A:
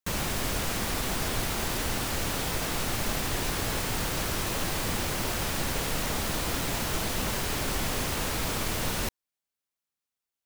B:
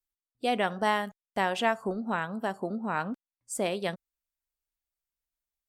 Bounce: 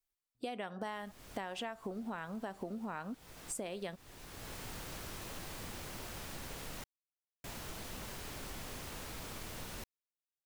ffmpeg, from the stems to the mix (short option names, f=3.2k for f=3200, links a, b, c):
-filter_complex "[0:a]adelay=750,volume=-15dB,asplit=3[a][b][c];[a]atrim=end=6.84,asetpts=PTS-STARTPTS,afade=t=out:st=6.836:d=0.004:c=hsin[d];[b]atrim=start=6.84:end=7.44,asetpts=PTS-STARTPTS,volume=0[e];[c]atrim=start=7.44,asetpts=PTS-STARTPTS,afade=t=in:d=0.004:c=hsin[f];[d][e][f]concat=n=3:v=0:a=1[g];[1:a]acompressor=threshold=-31dB:ratio=2.5,volume=0.5dB,asplit=2[h][i];[i]apad=whole_len=494061[j];[g][j]sidechaincompress=threshold=-46dB:ratio=5:attack=34:release=594[k];[k][h]amix=inputs=2:normalize=0,acompressor=threshold=-39dB:ratio=4"